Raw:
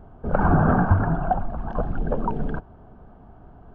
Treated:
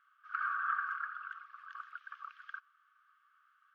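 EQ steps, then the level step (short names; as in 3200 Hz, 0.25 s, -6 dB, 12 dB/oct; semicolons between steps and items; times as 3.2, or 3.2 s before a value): brick-wall FIR high-pass 1100 Hz; -4.0 dB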